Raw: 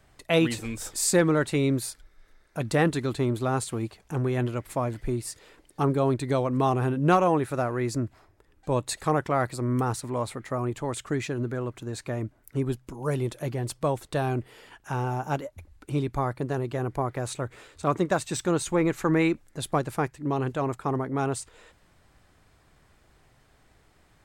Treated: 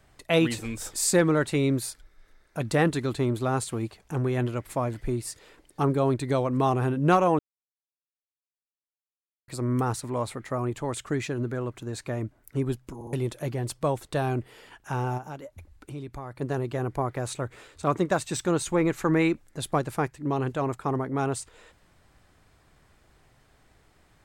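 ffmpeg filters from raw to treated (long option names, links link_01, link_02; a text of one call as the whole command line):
ffmpeg -i in.wav -filter_complex "[0:a]asplit=3[link_01][link_02][link_03];[link_01]afade=type=out:start_time=15.17:duration=0.02[link_04];[link_02]acompressor=threshold=-39dB:ratio=2.5:attack=3.2:release=140:knee=1:detection=peak,afade=type=in:start_time=15.17:duration=0.02,afade=type=out:start_time=16.4:duration=0.02[link_05];[link_03]afade=type=in:start_time=16.4:duration=0.02[link_06];[link_04][link_05][link_06]amix=inputs=3:normalize=0,asplit=6[link_07][link_08][link_09][link_10][link_11][link_12];[link_07]atrim=end=7.39,asetpts=PTS-STARTPTS,afade=type=out:start_time=7.386:duration=0.004:curve=hsin[link_13];[link_08]atrim=start=7.39:end=9.48,asetpts=PTS-STARTPTS,volume=0[link_14];[link_09]atrim=start=9.48:end=13.012,asetpts=PTS-STARTPTS,afade=type=in:duration=0.004:curve=hsin[link_15];[link_10]atrim=start=12.948:end=13.012[link_16];[link_11]atrim=start=12.948:end=13.012[link_17];[link_12]atrim=start=13.128[link_18];[link_13][link_14][link_15]concat=n=3:v=0:a=1[link_19];[link_19][link_16]acrossfade=duration=0.004:curve1=hsin:curve2=hsin[link_20];[link_20][link_17]acrossfade=duration=0.004:curve1=hsin:curve2=hsin[link_21];[link_21][link_18]acrossfade=duration=0.004:curve1=hsin:curve2=hsin" out.wav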